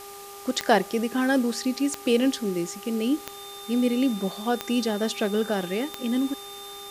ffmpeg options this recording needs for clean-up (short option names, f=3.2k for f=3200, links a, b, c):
-af "adeclick=t=4,bandreject=f=401.1:t=h:w=4,bandreject=f=802.2:t=h:w=4,bandreject=f=1.2033k:t=h:w=4,bandreject=f=3.6k:w=30,afwtdn=0.0063"